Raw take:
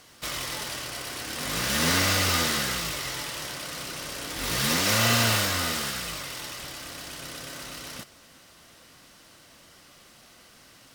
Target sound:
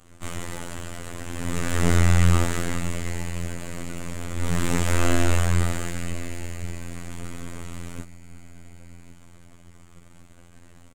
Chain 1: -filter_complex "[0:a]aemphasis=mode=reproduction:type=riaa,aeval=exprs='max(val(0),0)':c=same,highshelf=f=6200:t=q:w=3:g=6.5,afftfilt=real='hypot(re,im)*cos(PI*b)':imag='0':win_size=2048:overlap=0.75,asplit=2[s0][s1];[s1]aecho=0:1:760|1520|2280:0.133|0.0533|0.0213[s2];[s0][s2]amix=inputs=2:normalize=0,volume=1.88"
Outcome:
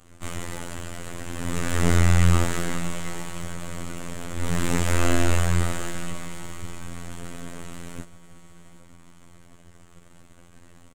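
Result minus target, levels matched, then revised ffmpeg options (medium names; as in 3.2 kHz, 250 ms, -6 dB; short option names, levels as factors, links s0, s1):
echo 355 ms early
-filter_complex "[0:a]aemphasis=mode=reproduction:type=riaa,aeval=exprs='max(val(0),0)':c=same,highshelf=f=6200:t=q:w=3:g=6.5,afftfilt=real='hypot(re,im)*cos(PI*b)':imag='0':win_size=2048:overlap=0.75,asplit=2[s0][s1];[s1]aecho=0:1:1115|2230|3345:0.133|0.0533|0.0213[s2];[s0][s2]amix=inputs=2:normalize=0,volume=1.88"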